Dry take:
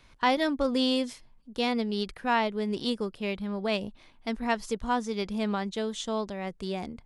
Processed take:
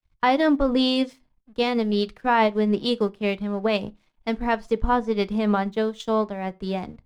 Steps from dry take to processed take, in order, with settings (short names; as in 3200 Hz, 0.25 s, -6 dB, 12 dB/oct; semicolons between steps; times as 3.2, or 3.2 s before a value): LPF 2400 Hz 6 dB/oct; crossover distortion -59 dBFS; limiter -21 dBFS, peak gain reduction 6.5 dB; transient shaper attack +1 dB, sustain -7 dB; reverb RT60 0.25 s, pre-delay 6 ms, DRR 12.5 dB; three-band expander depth 70%; gain +9 dB